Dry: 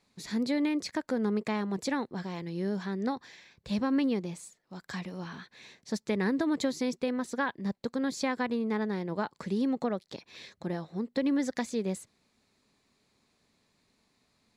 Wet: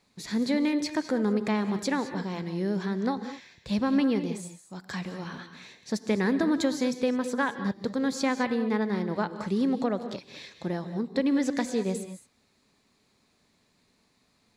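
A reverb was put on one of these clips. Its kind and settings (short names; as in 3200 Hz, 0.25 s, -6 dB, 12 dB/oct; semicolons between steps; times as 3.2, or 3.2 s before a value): non-linear reverb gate 0.24 s rising, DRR 10 dB; gain +3 dB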